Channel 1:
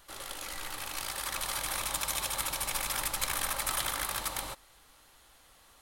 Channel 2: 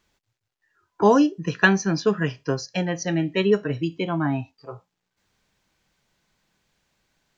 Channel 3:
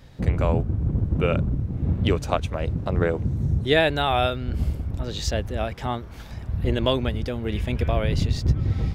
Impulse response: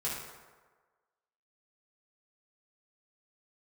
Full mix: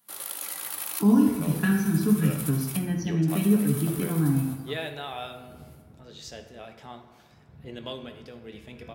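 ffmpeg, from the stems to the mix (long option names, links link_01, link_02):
-filter_complex "[0:a]highshelf=frequency=8100:gain=9.5,aexciter=amount=2.2:drive=5.2:freq=9800,volume=-2dB,asplit=3[link_01][link_02][link_03];[link_01]atrim=end=2.77,asetpts=PTS-STARTPTS,afade=type=out:start_time=2.766:duration=0.004:curve=hsin[link_04];[link_02]atrim=start=2.77:end=3.28,asetpts=PTS-STARTPTS,volume=0[link_05];[link_03]atrim=start=3.28,asetpts=PTS-STARTPTS,afade=type=in:duration=0.004:curve=hsin[link_06];[link_04][link_05][link_06]concat=n=3:v=0:a=1,asplit=2[link_07][link_08];[link_08]volume=-16.5dB[link_09];[1:a]lowshelf=frequency=350:width_type=q:width=3:gain=11.5,volume=-11.5dB,asplit=3[link_10][link_11][link_12];[link_11]volume=-5.5dB[link_13];[2:a]adynamicequalizer=threshold=0.0126:dfrequency=2300:dqfactor=0.7:tfrequency=2300:tqfactor=0.7:attack=5:release=100:ratio=0.375:range=2:mode=boostabove:tftype=highshelf,adelay=1000,volume=-18dB,asplit=2[link_14][link_15];[link_15]volume=-6.5dB[link_16];[link_12]apad=whole_len=256418[link_17];[link_07][link_17]sidechaincompress=threshold=-43dB:ratio=4:attack=16:release=339[link_18];[link_18][link_10]amix=inputs=2:normalize=0,agate=range=-23dB:threshold=-52dB:ratio=16:detection=peak,acompressor=threshold=-28dB:ratio=6,volume=0dB[link_19];[3:a]atrim=start_sample=2205[link_20];[link_09][link_13][link_16]amix=inputs=3:normalize=0[link_21];[link_21][link_20]afir=irnorm=-1:irlink=0[link_22];[link_14][link_19][link_22]amix=inputs=3:normalize=0,highpass=160"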